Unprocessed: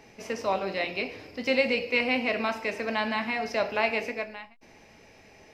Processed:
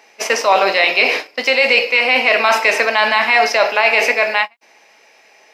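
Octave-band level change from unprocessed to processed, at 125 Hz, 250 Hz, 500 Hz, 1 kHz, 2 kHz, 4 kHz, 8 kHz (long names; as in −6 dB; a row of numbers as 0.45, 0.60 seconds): can't be measured, +1.0 dB, +12.0 dB, +16.0 dB, +16.5 dB, +16.5 dB, +21.5 dB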